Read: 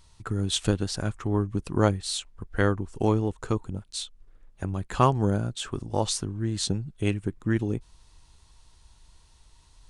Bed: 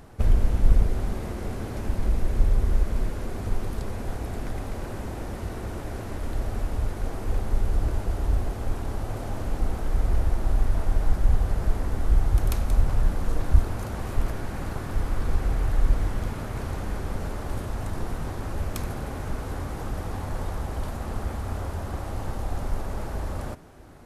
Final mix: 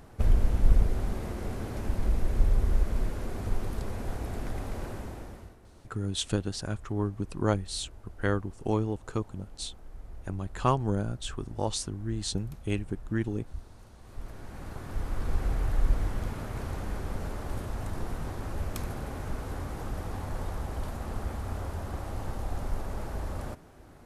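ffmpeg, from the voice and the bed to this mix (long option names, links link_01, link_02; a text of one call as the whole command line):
ffmpeg -i stem1.wav -i stem2.wav -filter_complex "[0:a]adelay=5650,volume=-4.5dB[link_01];[1:a]volume=15dB,afade=type=out:start_time=4.83:duration=0.74:silence=0.112202,afade=type=in:start_time=14:duration=1.43:silence=0.125893[link_02];[link_01][link_02]amix=inputs=2:normalize=0" out.wav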